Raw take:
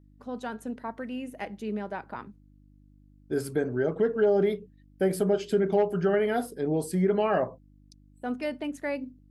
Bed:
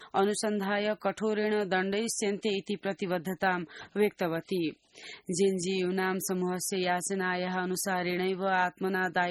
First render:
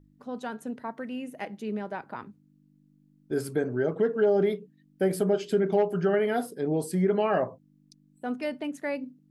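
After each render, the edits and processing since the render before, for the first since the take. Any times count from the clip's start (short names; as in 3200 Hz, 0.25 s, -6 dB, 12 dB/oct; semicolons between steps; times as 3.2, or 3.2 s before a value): de-hum 50 Hz, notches 2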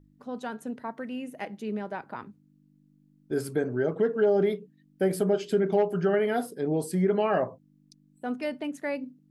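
nothing audible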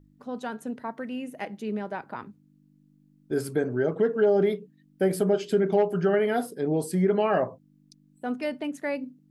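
gain +1.5 dB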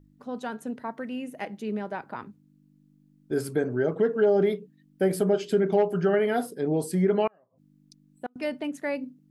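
7.27–8.36 flipped gate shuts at -22 dBFS, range -38 dB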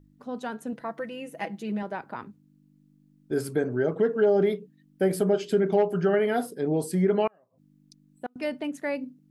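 0.72–1.83 comb 6 ms, depth 69%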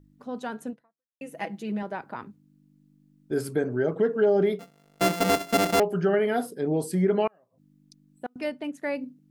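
0.69–1.21 fade out exponential; 4.59–5.8 sample sorter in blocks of 64 samples; 8.43–8.83 upward expander, over -37 dBFS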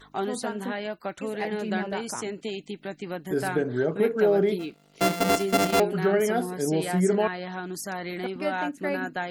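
add bed -3 dB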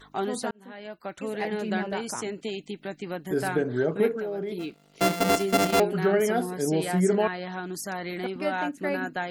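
0.51–1.33 fade in; 4.13–4.58 compressor 5:1, threshold -29 dBFS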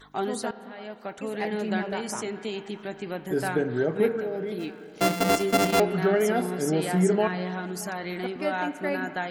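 band-limited delay 0.62 s, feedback 63%, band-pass 1400 Hz, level -17 dB; spring tank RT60 3 s, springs 33/38 ms, chirp 20 ms, DRR 13 dB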